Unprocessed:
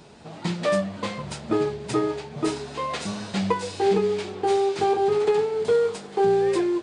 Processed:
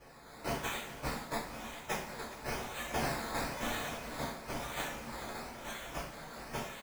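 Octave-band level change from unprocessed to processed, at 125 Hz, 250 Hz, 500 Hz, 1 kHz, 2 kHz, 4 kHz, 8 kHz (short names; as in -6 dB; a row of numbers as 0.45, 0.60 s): -12.0, -16.5, -21.5, -12.0, -4.5, -7.5, -4.5 dB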